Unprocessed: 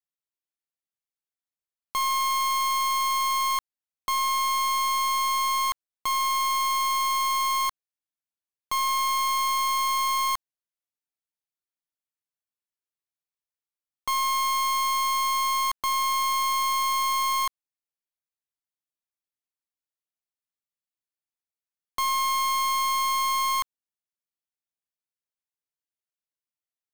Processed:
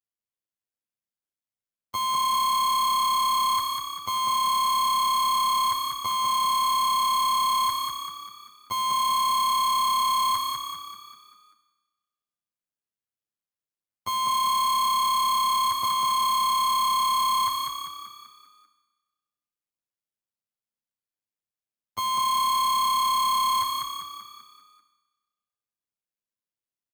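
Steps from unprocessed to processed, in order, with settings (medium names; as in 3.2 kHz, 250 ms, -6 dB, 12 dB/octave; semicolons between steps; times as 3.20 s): high-pass 56 Hz; bass shelf 310 Hz +10 dB; robot voice 104 Hz; waveshaping leveller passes 1; frequency-shifting echo 195 ms, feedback 50%, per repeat +34 Hz, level -4 dB; Schroeder reverb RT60 1.3 s, combs from 25 ms, DRR 9 dB; trim -2 dB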